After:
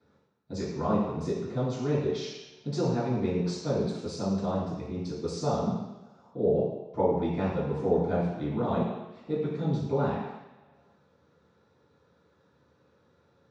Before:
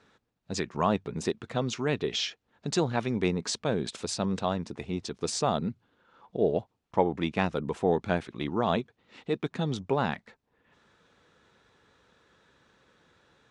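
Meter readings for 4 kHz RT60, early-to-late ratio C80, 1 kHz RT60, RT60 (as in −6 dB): 1.3 s, 4.5 dB, 1.2 s, 1.1 s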